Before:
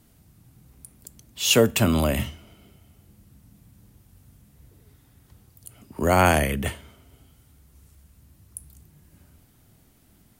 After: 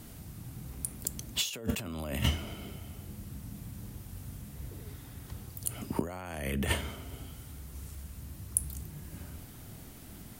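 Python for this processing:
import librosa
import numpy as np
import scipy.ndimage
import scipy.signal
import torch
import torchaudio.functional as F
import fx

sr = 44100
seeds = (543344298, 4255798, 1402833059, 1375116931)

y = fx.over_compress(x, sr, threshold_db=-34.0, ratio=-1.0)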